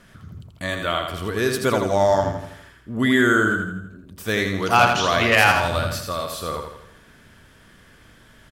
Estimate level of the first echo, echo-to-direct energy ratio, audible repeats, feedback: −5.5 dB, −4.5 dB, 5, 48%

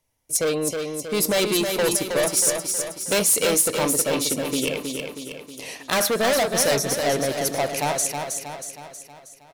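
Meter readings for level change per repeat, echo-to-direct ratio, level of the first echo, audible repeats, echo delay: −5.5 dB, −4.0 dB, −5.5 dB, 6, 318 ms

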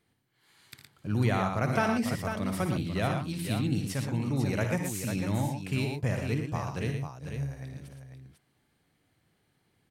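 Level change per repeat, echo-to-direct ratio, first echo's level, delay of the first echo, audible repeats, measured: repeats not evenly spaced, −2.0 dB, −9.0 dB, 58 ms, 3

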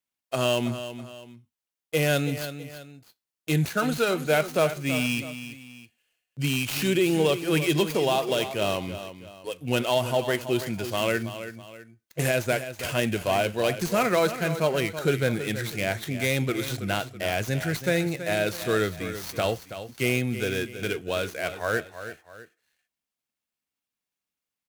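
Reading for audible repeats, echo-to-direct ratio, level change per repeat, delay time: 2, −11.0 dB, −8.0 dB, 327 ms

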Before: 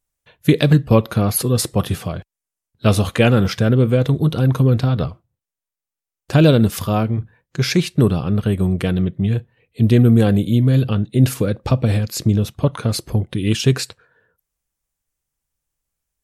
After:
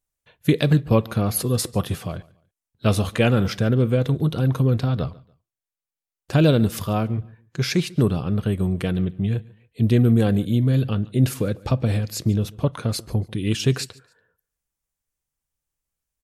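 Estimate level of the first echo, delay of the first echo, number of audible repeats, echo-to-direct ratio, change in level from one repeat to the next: −23.0 dB, 143 ms, 2, −22.5 dB, −11.0 dB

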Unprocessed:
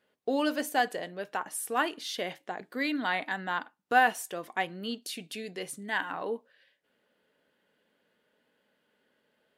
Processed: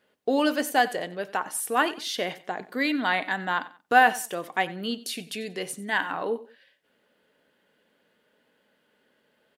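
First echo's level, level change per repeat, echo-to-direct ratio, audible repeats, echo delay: −18.0 dB, −11.0 dB, −17.5 dB, 2, 92 ms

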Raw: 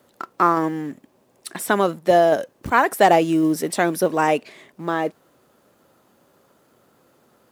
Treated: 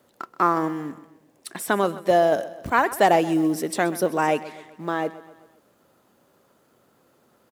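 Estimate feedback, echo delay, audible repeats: 51%, 129 ms, 4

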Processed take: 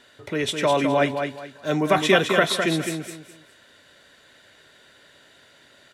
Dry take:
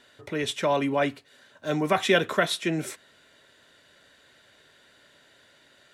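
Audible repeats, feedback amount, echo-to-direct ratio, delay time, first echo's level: 3, 27%, −5.5 dB, 208 ms, −6.0 dB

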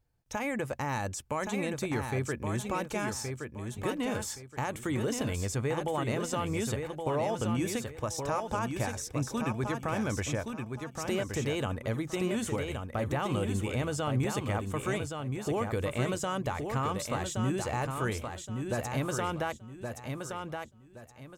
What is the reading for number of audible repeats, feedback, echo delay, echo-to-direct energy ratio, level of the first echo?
3, 28%, 1,121 ms, −5.0 dB, −5.5 dB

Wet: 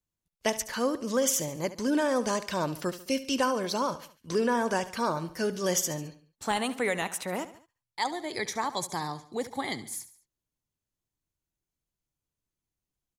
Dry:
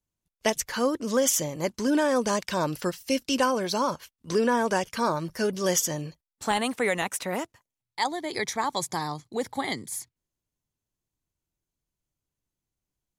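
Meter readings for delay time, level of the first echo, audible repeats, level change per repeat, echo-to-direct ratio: 71 ms, −15.0 dB, 3, −6.5 dB, −14.0 dB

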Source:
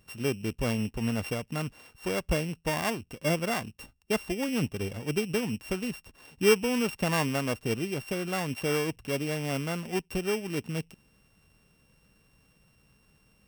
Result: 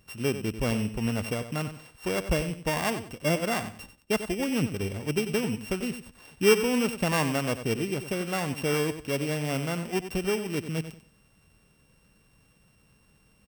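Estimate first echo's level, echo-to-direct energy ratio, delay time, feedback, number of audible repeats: −11.0 dB, −10.5 dB, 93 ms, 25%, 2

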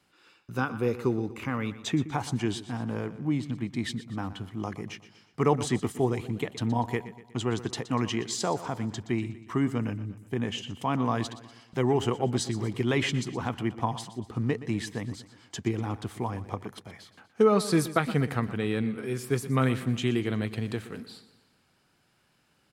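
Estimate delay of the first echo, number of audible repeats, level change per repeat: 121 ms, 4, −6.0 dB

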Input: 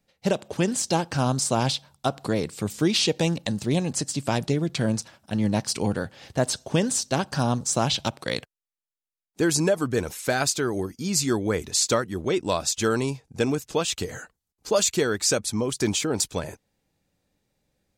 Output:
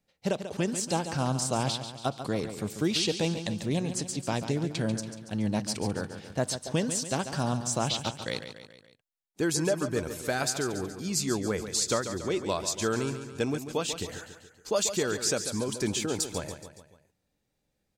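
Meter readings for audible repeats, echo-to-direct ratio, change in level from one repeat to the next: 4, −8.5 dB, −5.5 dB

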